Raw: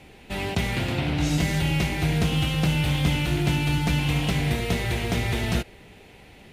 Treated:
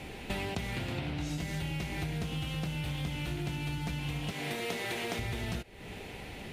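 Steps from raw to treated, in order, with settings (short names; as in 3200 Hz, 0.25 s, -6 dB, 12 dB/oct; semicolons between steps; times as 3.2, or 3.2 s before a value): 4.31–5.19 HPF 280 Hz 12 dB/oct; compressor 16:1, threshold -37 dBFS, peak gain reduction 20 dB; gain +5 dB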